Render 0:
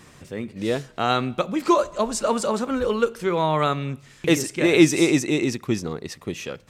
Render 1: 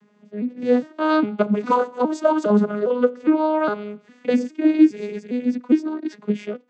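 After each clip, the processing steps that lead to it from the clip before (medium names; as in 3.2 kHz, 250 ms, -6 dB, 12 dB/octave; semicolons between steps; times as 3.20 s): vocoder on a broken chord minor triad, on G#3, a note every 408 ms; treble shelf 4.3 kHz -8 dB; level rider gain up to 15.5 dB; trim -3.5 dB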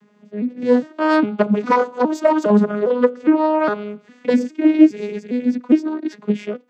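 self-modulated delay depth 0.14 ms; trim +3 dB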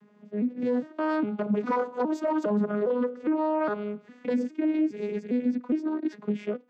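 treble shelf 2.8 kHz -9 dB; in parallel at -1.5 dB: compression, threshold -24 dBFS, peak gain reduction 17.5 dB; on the sum: peak limiter -10.5 dBFS, peak gain reduction 10 dB; trim -8 dB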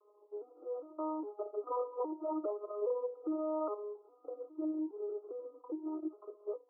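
companding laws mixed up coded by mu; brick-wall FIR band-pass 300–1400 Hz; Shepard-style phaser falling 1.1 Hz; trim -7.5 dB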